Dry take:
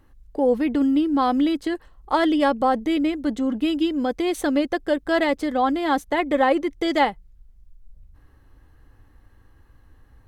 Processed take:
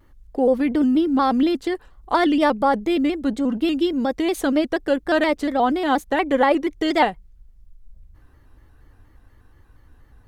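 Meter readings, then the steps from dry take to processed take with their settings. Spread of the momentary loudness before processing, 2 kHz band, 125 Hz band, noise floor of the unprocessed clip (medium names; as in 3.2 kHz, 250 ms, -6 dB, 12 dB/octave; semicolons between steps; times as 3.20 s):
5 LU, +1.5 dB, no reading, -55 dBFS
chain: vibrato with a chosen wave square 4.2 Hz, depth 100 cents; trim +1.5 dB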